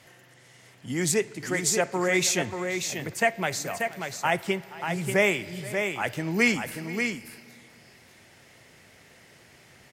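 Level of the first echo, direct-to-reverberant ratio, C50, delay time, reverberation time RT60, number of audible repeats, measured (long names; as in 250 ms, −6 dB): −19.0 dB, no reverb audible, no reverb audible, 476 ms, no reverb audible, 2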